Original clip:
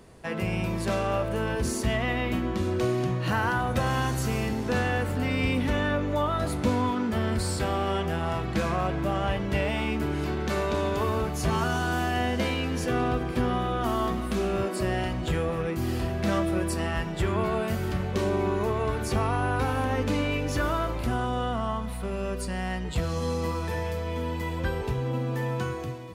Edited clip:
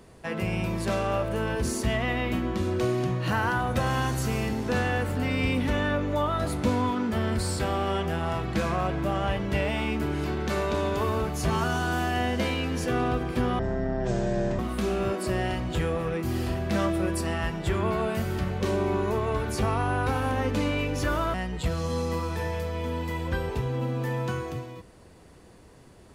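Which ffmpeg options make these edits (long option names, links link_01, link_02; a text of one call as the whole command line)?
ffmpeg -i in.wav -filter_complex "[0:a]asplit=4[link_01][link_02][link_03][link_04];[link_01]atrim=end=13.594[link_05];[link_02]atrim=start=13.59:end=14.12,asetpts=PTS-STARTPTS,asetrate=23373,aresample=44100[link_06];[link_03]atrim=start=14.116:end=20.872[link_07];[link_04]atrim=start=22.658[link_08];[link_05][link_06]acrossfade=duration=0.004:curve1=hsin:curve2=hsin[link_09];[link_09][link_07]acrossfade=duration=0.004:curve1=hsin:curve2=hsin[link_10];[link_10][link_08]acrossfade=duration=0.004:curve1=hsin:curve2=hsin" out.wav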